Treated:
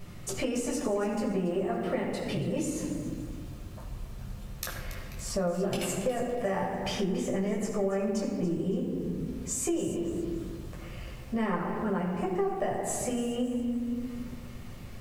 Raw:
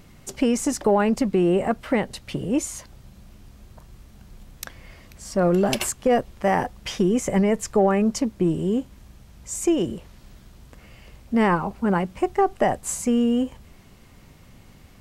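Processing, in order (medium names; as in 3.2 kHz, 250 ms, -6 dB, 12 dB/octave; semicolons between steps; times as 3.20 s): reverberation RT60 1.3 s, pre-delay 10 ms, DRR -3 dB; compression 4:1, threshold -26 dBFS, peak gain reduction 18 dB; bit-crushed delay 281 ms, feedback 35%, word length 8-bit, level -13 dB; trim -3.5 dB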